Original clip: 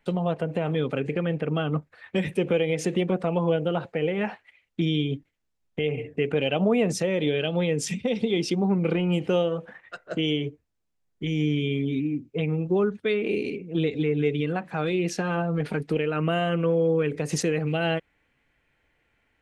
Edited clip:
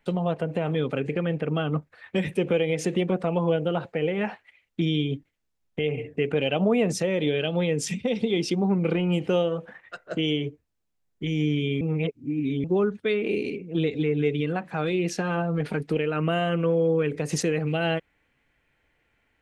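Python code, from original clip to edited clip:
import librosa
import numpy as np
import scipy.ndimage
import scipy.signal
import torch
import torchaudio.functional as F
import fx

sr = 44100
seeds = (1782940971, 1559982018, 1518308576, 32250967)

y = fx.edit(x, sr, fx.reverse_span(start_s=11.81, length_s=0.83), tone=tone)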